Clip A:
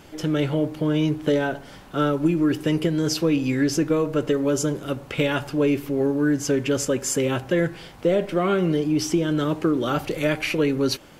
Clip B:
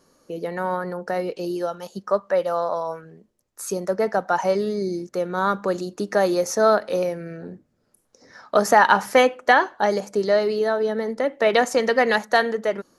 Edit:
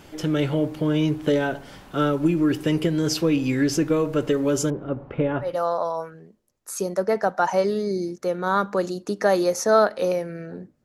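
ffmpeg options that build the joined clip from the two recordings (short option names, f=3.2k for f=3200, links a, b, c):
-filter_complex "[0:a]asettb=1/sr,asplit=3[a][b][c];[a]atrim=end=4.704[d];[b]atrim=start=4.7:end=5.57,asetpts=PTS-STARTPTS,afade=t=in:d=0.004:c=qsin,afade=t=out:st=0.866:d=0.004:c=qsin,lowpass=1.1k[e];[c]atrim=start=5.566[f];[d][e]acrossfade=d=0.004:c1=hsin:c2=qsin[g];[g][f]acrossfade=d=0.004:c1=qsin:c2=hsin,apad=whole_dur=10.84,atrim=end=10.84,atrim=end=5.57,asetpts=PTS-STARTPTS[h];[1:a]atrim=start=2.3:end=7.75,asetpts=PTS-STARTPTS[i];[h][i]acrossfade=d=0.18:c1=tri:c2=tri"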